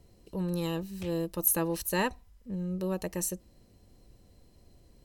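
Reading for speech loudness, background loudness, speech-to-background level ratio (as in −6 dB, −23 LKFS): −31.5 LKFS, −50.5 LKFS, 19.0 dB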